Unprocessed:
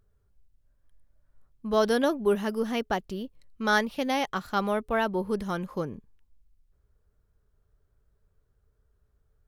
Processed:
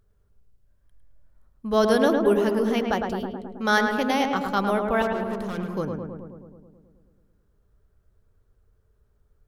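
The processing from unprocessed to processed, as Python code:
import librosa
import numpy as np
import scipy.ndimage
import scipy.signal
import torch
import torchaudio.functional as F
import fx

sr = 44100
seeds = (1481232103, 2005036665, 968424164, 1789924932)

y = fx.overload_stage(x, sr, gain_db=34.5, at=(5.02, 5.58))
y = fx.echo_filtered(y, sr, ms=107, feedback_pct=71, hz=1900.0, wet_db=-4.0)
y = y * 10.0 ** (2.5 / 20.0)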